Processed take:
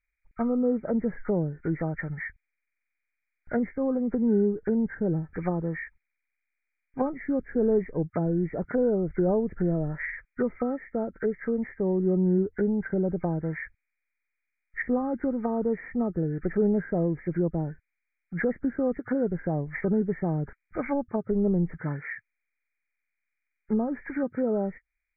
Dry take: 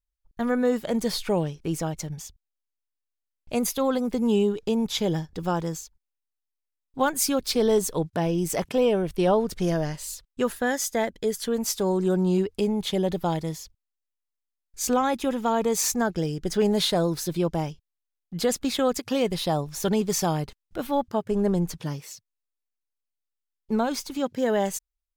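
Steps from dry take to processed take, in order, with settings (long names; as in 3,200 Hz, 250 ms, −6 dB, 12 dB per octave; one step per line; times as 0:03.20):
hearing-aid frequency compression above 1,200 Hz 4 to 1
treble cut that deepens with the level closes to 470 Hz, closed at −22 dBFS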